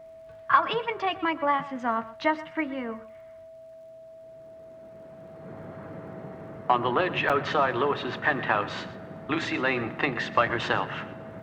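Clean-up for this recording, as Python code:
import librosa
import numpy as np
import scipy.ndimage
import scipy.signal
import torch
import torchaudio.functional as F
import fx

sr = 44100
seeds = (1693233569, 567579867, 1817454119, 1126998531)

y = fx.fix_declick_ar(x, sr, threshold=6.5)
y = fx.notch(y, sr, hz=650.0, q=30.0)
y = fx.fix_interpolate(y, sr, at_s=(7.29,), length_ms=7.1)
y = fx.fix_echo_inverse(y, sr, delay_ms=123, level_db=-17.0)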